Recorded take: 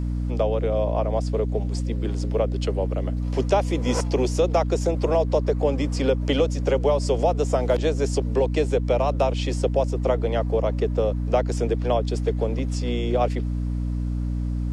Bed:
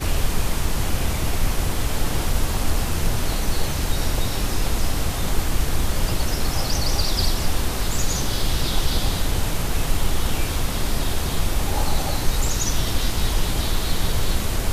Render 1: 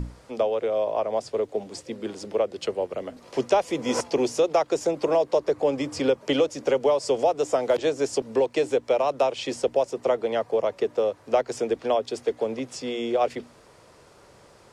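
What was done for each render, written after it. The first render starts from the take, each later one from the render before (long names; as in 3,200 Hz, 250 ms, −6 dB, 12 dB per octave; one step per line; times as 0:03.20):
mains-hum notches 60/120/180/240/300 Hz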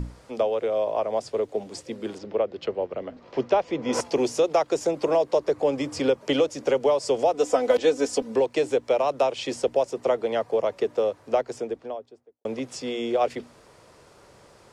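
0:02.18–0:03.93: high-frequency loss of the air 190 metres
0:07.33–0:08.35: comb filter 4 ms, depth 73%
0:11.05–0:12.45: fade out and dull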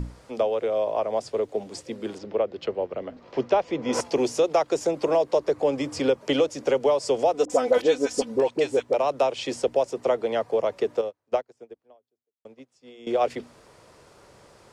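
0:07.45–0:08.94: all-pass dispersion highs, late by 47 ms, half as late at 750 Hz
0:11.01–0:13.07: expander for the loud parts 2.5 to 1, over −37 dBFS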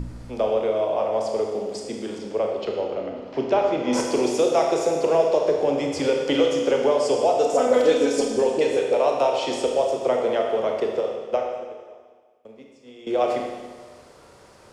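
four-comb reverb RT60 1.5 s, combs from 25 ms, DRR 0.5 dB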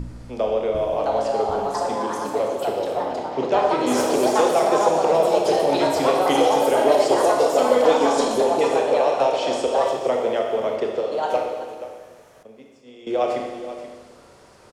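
single-tap delay 480 ms −13 dB
delay with pitch and tempo change per echo 746 ms, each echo +4 semitones, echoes 2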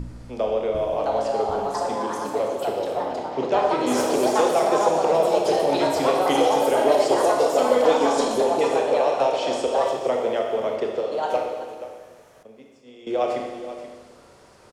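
level −1.5 dB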